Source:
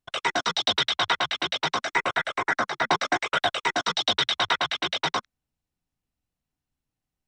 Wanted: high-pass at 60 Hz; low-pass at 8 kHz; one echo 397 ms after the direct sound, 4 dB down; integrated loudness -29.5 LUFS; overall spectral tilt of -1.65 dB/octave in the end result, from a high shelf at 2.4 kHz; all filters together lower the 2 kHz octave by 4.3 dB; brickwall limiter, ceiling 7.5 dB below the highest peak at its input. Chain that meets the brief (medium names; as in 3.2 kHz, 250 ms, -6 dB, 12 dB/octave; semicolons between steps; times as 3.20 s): high-pass 60 Hz; low-pass 8 kHz; peaking EQ 2 kHz -7 dB; treble shelf 2.4 kHz +3 dB; peak limiter -16 dBFS; delay 397 ms -4 dB; trim -2 dB